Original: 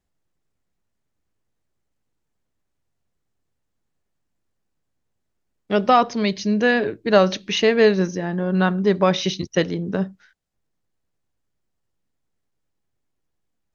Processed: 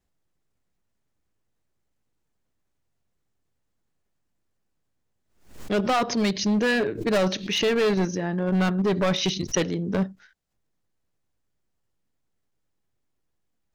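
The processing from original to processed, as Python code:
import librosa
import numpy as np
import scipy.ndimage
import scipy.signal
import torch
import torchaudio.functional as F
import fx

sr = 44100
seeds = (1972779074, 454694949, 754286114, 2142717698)

p1 = fx.level_steps(x, sr, step_db=11)
p2 = x + F.gain(torch.from_numpy(p1), 0.0).numpy()
p3 = np.clip(p2, -10.0 ** (-13.5 / 20.0), 10.0 ** (-13.5 / 20.0))
p4 = fx.pre_swell(p3, sr, db_per_s=110.0)
y = F.gain(torch.from_numpy(p4), -5.0).numpy()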